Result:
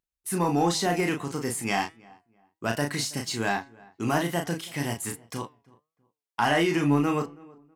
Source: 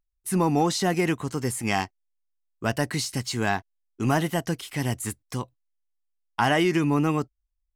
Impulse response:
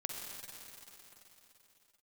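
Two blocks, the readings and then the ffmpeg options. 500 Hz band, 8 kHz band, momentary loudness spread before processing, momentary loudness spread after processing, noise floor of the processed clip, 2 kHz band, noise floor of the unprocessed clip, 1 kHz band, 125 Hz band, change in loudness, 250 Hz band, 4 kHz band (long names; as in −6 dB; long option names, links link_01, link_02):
−1.0 dB, 0.0 dB, 12 LU, 12 LU, below −85 dBFS, −0.5 dB, −78 dBFS, −0.5 dB, −3.5 dB, −1.5 dB, −1.5 dB, −0.5 dB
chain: -filter_complex "[0:a]highpass=frequency=180:poles=1,asplit=2[link_01][link_02];[link_02]adelay=35,volume=-5dB[link_03];[link_01][link_03]amix=inputs=2:normalize=0,asplit=2[link_04][link_05];[link_05]asoftclip=type=hard:threshold=-18dB,volume=-7dB[link_06];[link_04][link_06]amix=inputs=2:normalize=0,asplit=2[link_07][link_08];[link_08]adelay=324,lowpass=frequency=1600:poles=1,volume=-23.5dB,asplit=2[link_09][link_10];[link_10]adelay=324,lowpass=frequency=1600:poles=1,volume=0.29[link_11];[link_07][link_09][link_11]amix=inputs=3:normalize=0,flanger=delay=6:depth=1.2:regen=89:speed=1.5:shape=sinusoidal"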